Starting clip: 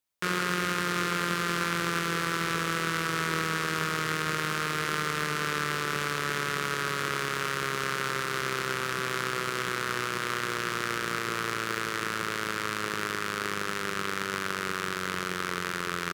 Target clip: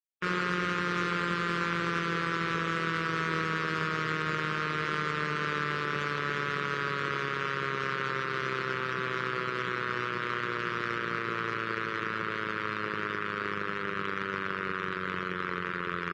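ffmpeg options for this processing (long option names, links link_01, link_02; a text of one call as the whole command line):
ffmpeg -i in.wav -af "afftdn=noise_reduction=29:noise_floor=-38,asoftclip=type=tanh:threshold=-15dB" out.wav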